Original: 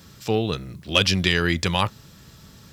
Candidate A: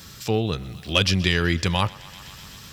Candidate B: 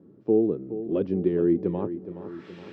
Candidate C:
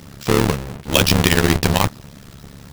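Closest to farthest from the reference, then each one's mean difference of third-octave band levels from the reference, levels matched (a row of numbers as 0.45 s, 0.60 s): A, C, B; 3.5 dB, 6.0 dB, 14.5 dB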